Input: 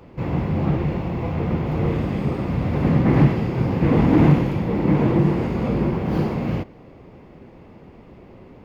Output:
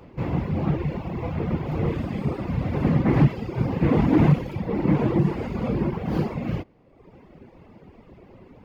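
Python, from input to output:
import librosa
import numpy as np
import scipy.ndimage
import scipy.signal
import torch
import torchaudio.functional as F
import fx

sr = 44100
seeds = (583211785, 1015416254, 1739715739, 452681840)

y = fx.dereverb_blind(x, sr, rt60_s=1.1)
y = F.gain(torch.from_numpy(y), -1.0).numpy()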